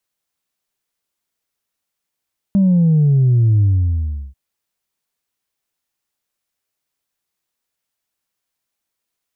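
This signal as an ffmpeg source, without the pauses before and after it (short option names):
-f lavfi -i "aevalsrc='0.316*clip((1.79-t)/0.72,0,1)*tanh(1.06*sin(2*PI*200*1.79/log(65/200)*(exp(log(65/200)*t/1.79)-1)))/tanh(1.06)':d=1.79:s=44100"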